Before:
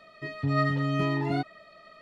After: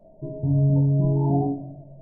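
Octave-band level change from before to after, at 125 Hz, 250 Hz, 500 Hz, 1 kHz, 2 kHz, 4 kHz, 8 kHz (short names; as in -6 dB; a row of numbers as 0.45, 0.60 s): +9.5 dB, +6.0 dB, +3.5 dB, -2.5 dB, under -40 dB, under -40 dB, n/a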